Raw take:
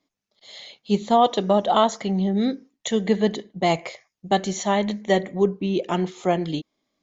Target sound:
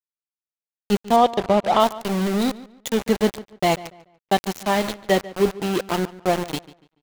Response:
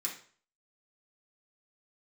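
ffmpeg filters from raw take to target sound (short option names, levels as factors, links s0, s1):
-filter_complex "[0:a]asplit=2[s0][s1];[1:a]atrim=start_sample=2205,asetrate=74970,aresample=44100[s2];[s1][s2]afir=irnorm=-1:irlink=0,volume=0.0631[s3];[s0][s3]amix=inputs=2:normalize=0,aeval=exprs='val(0)*gte(abs(val(0)),0.0708)':c=same,asettb=1/sr,asplit=3[s4][s5][s6];[s4]atrim=end=1.164[s7];[s5]atrim=start=1.16:end=1.8,asetpts=PTS-STARTPTS,afade=t=in:d=0.004:c=qsin,afade=t=out:st=0.636:d=0.004:c=qsin,aemphasis=mode=reproduction:type=50fm[s8];[s6]atrim=start=1.796[s9];[s7][s8]acrossfade=d=0.004:c1=hsin:c2=qsin[s10];[s10][s9]acrossfade=d=0.004:c1=qsin:c2=hsin,asplit=2[s11][s12];[s12]adelay=144,lowpass=f=4100:p=1,volume=0.126,asplit=2[s13][s14];[s14]adelay=144,lowpass=f=4100:p=1,volume=0.3,asplit=2[s15][s16];[s16]adelay=144,lowpass=f=4100:p=1,volume=0.3[s17];[s13][s15][s17]amix=inputs=3:normalize=0[s18];[s11][s18]amix=inputs=2:normalize=0,volume=1.12"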